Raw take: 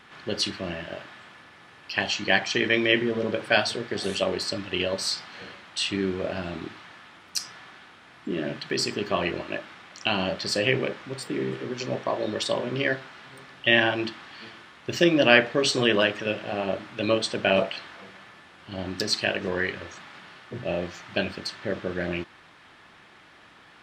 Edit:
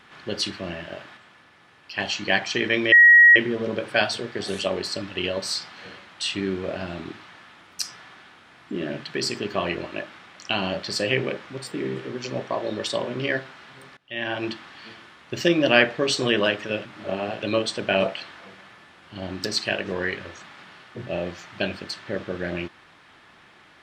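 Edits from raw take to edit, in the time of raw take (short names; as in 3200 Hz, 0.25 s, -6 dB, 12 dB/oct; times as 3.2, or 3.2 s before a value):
1.17–1.99 gain -4 dB
2.92 add tone 1900 Hz -8 dBFS 0.44 s
13.53–14 fade in quadratic, from -21.5 dB
16.41–16.98 reverse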